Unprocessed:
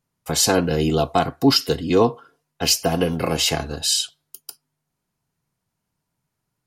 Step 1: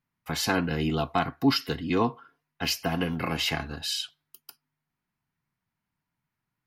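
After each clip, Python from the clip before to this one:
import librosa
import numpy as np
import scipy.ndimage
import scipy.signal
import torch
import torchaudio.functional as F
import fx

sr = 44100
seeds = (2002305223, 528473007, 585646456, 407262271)

y = fx.graphic_eq(x, sr, hz=(250, 500, 1000, 2000, 8000), db=(3, -7, 3, 7, -11))
y = y * 10.0 ** (-7.0 / 20.0)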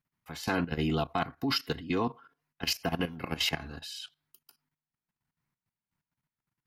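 y = fx.level_steps(x, sr, step_db=14)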